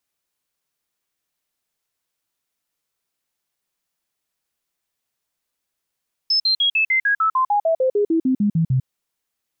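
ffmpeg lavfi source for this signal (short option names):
-f lavfi -i "aevalsrc='0.188*clip(min(mod(t,0.15),0.1-mod(t,0.15))/0.005,0,1)*sin(2*PI*5230*pow(2,-floor(t/0.15)/3)*mod(t,0.15))':d=2.55:s=44100"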